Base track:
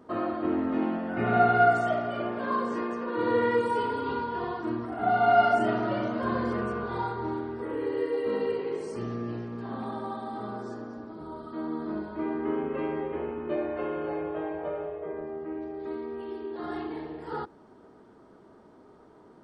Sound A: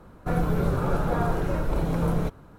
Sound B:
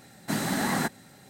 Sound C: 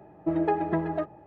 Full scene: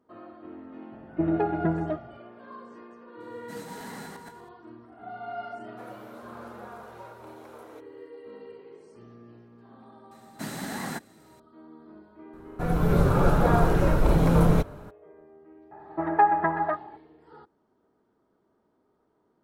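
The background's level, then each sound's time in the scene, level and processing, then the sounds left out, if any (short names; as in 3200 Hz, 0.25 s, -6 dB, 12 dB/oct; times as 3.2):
base track -16 dB
0.92 add C -5.5 dB + low shelf 360 Hz +11.5 dB
3.2 add B -17 dB + regenerating reverse delay 0.121 s, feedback 43%, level -1 dB
5.51 add A -14.5 dB + HPF 490 Hz 24 dB/oct
10.11 add B -7 dB
12.33 add A -4.5 dB + AGC
15.71 add C -5 dB + band shelf 1200 Hz +15 dB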